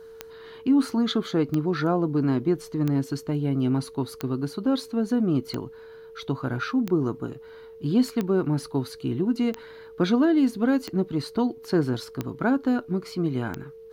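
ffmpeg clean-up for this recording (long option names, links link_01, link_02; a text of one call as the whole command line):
ffmpeg -i in.wav -af "adeclick=threshold=4,bandreject=frequency=450:width=30" out.wav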